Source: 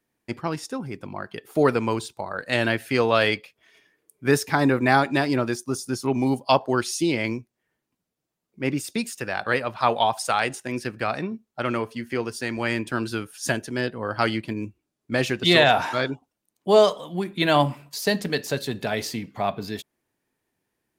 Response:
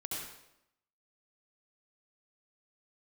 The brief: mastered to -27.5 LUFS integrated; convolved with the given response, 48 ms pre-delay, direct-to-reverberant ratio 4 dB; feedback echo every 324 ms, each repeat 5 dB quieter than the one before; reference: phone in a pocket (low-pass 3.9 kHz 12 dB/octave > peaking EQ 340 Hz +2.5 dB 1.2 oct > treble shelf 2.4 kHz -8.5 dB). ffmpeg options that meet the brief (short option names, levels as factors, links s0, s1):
-filter_complex "[0:a]aecho=1:1:324|648|972|1296|1620|1944|2268:0.562|0.315|0.176|0.0988|0.0553|0.031|0.0173,asplit=2[s0][s1];[1:a]atrim=start_sample=2205,adelay=48[s2];[s1][s2]afir=irnorm=-1:irlink=0,volume=0.531[s3];[s0][s3]amix=inputs=2:normalize=0,lowpass=3900,equalizer=f=340:t=o:w=1.2:g=2.5,highshelf=f=2400:g=-8.5,volume=0.501"